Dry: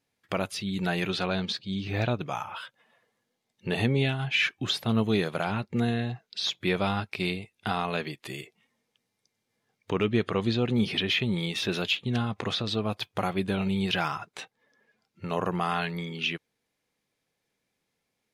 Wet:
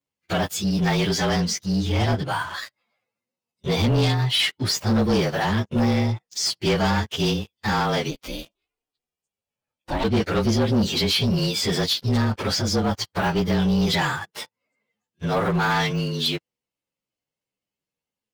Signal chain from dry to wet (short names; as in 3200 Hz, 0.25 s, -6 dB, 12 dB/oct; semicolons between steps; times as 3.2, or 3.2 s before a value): inharmonic rescaling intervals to 111%; sample leveller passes 3; 8.1–10.03 ring modulator 140 Hz -> 470 Hz